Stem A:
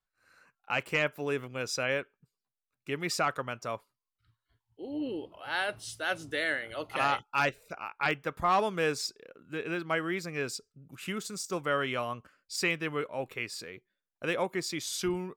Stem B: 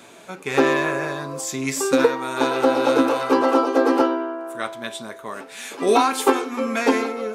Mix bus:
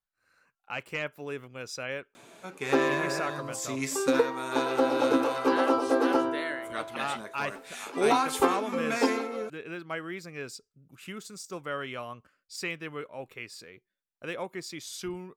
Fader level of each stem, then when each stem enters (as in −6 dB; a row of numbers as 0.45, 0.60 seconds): −5.0, −7.0 decibels; 0.00, 2.15 seconds